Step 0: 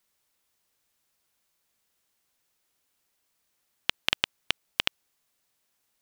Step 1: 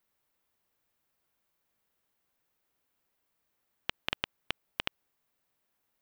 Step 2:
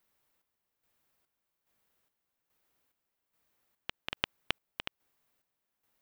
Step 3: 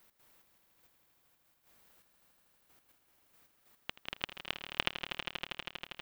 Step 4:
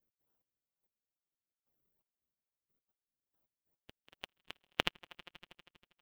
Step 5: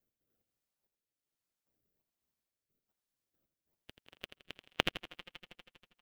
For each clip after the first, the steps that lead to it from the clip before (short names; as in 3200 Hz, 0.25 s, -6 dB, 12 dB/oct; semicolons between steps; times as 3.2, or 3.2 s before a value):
bell 6900 Hz -10.5 dB 2.5 oct; limiter -9.5 dBFS, peak gain reduction 3 dB
chopper 1.2 Hz, depth 60%, duty 50%; gain +2.5 dB
vocal rider 0.5 s; step gate "x.xxxx..x....x." 156 bpm -12 dB; swelling echo 80 ms, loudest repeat 5, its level -11 dB; gain +9 dB
per-bin expansion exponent 3; in parallel at -7 dB: decimation with a swept rate 37×, swing 100% 2.3 Hz; on the sum: gain +2 dB
rotary speaker horn 1.2 Hz, later 8 Hz, at 4.52; on a send: feedback echo 84 ms, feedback 41%, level -10 dB; on the sum: gain +5 dB